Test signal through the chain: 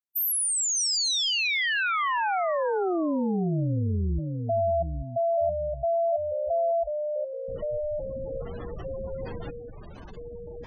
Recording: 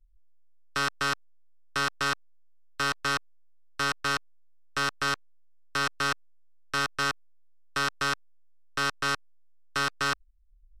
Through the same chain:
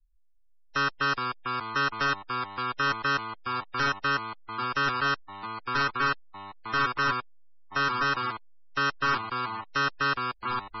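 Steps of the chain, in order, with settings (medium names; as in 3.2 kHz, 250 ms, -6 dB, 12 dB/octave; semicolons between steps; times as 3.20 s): ever faster or slower copies 325 ms, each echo -2 st, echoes 3, each echo -6 dB; spectral noise reduction 10 dB; in parallel at -6 dB: hard clipper -28 dBFS; on the sum: spectral gate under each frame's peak -15 dB strong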